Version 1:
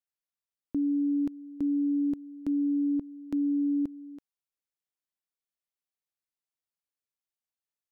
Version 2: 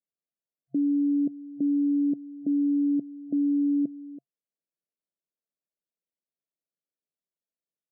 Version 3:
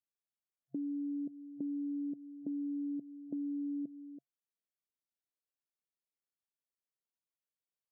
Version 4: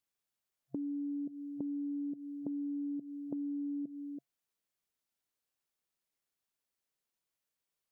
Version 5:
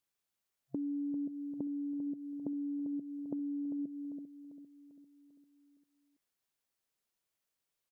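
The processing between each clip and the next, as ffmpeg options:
ffmpeg -i in.wav -af "afftfilt=real='re*between(b*sr/4096,130,690)':imag='im*between(b*sr/4096,130,690)':win_size=4096:overlap=0.75,volume=3dB" out.wav
ffmpeg -i in.wav -af "acompressor=threshold=-28dB:ratio=6,volume=-8dB" out.wav
ffmpeg -i in.wav -af "acompressor=threshold=-42dB:ratio=6,volume=6dB" out.wav
ffmpeg -i in.wav -af "aecho=1:1:396|792|1188|1584|1980:0.316|0.158|0.0791|0.0395|0.0198,volume=1dB" out.wav

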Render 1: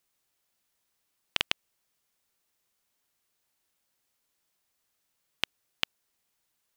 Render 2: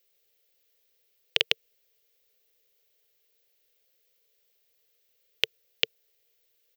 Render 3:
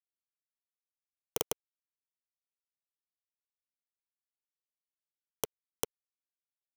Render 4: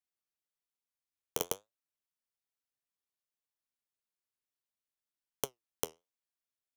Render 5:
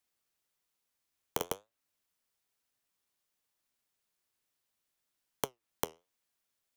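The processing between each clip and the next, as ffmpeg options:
ffmpeg -i in.wav -af "firequalizer=gain_entry='entry(130,0);entry(220,-18);entry(450,15);entry(640,3);entry(920,-9);entry(2000,3);entry(3100,6);entry(5900,3);entry(9700,-5);entry(15000,11)':delay=0.05:min_phase=1" out.wav
ffmpeg -i in.wav -af "acrusher=bits=7:mix=0:aa=0.000001,highshelf=frequency=2800:gain=-11,aeval=exprs='(mod(6.68*val(0)+1,2)-1)/6.68':channel_layout=same,volume=1.5dB" out.wav
ffmpeg -i in.wav -af "flanger=delay=7.2:depth=5.5:regen=69:speed=1.1:shape=triangular,volume=4dB" out.wav
ffmpeg -i in.wav -filter_complex "[0:a]acrossover=split=740|3000[link_01][link_02][link_03];[link_01]acompressor=threshold=-45dB:ratio=4[link_04];[link_02]acompressor=threshold=-48dB:ratio=4[link_05];[link_03]acompressor=threshold=-48dB:ratio=4[link_06];[link_04][link_05][link_06]amix=inputs=3:normalize=0,volume=9.5dB" out.wav

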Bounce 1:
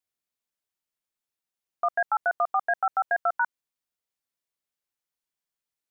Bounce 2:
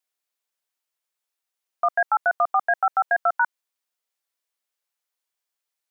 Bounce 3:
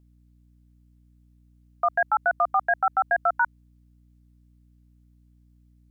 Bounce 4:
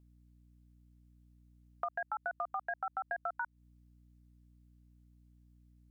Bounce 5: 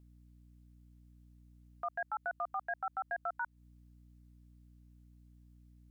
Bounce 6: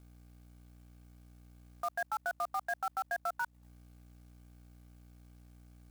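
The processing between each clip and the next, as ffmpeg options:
ffmpeg -i in.wav -af "highpass=470,volume=4.5dB" out.wav
ffmpeg -i in.wav -af "aeval=exprs='val(0)+0.00178*(sin(2*PI*60*n/s)+sin(2*PI*2*60*n/s)/2+sin(2*PI*3*60*n/s)/3+sin(2*PI*4*60*n/s)/4+sin(2*PI*5*60*n/s)/5)':channel_layout=same,volume=-1.5dB" out.wav
ffmpeg -i in.wav -af "acompressor=threshold=-29dB:ratio=10,volume=-5dB" out.wav
ffmpeg -i in.wav -af "alimiter=level_in=8dB:limit=-24dB:level=0:latency=1:release=19,volume=-8dB,volume=3dB" out.wav
ffmpeg -i in.wav -af "acrusher=bits=3:mode=log:mix=0:aa=0.000001,volume=2dB" out.wav

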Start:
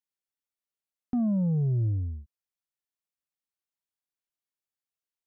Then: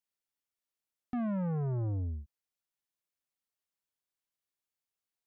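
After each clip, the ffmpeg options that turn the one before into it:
ffmpeg -i in.wav -af "asoftclip=type=tanh:threshold=-31dB" out.wav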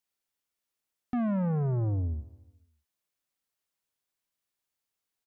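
ffmpeg -i in.wav -af "aecho=1:1:147|294|441|588:0.1|0.05|0.025|0.0125,volume=4.5dB" out.wav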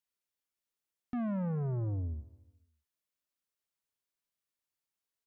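ffmpeg -i in.wav -af "bandreject=frequency=770:width=12,volume=-5.5dB" out.wav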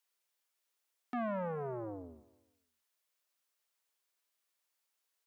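ffmpeg -i in.wav -af "highpass=450,volume=7dB" out.wav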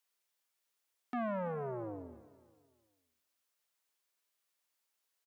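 ffmpeg -i in.wav -af "aecho=1:1:331|662|993:0.1|0.038|0.0144" out.wav

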